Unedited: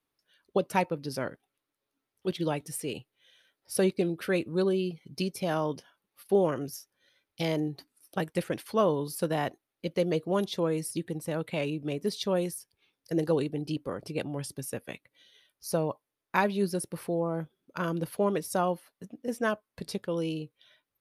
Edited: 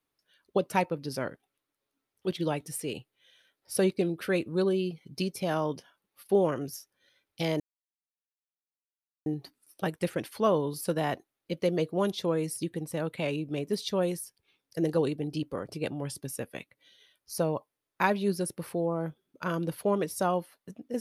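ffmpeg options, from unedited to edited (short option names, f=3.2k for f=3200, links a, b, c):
-filter_complex "[0:a]asplit=2[a][b];[a]atrim=end=7.6,asetpts=PTS-STARTPTS,afade=t=out:st=7.596:d=0.004:c=hsin,apad=pad_dur=1.66[c];[b]atrim=start=7.6,asetpts=PTS-STARTPTS,afade=t=in:d=0.004:c=hsin[d];[c][d]concat=n=2:v=0:a=1"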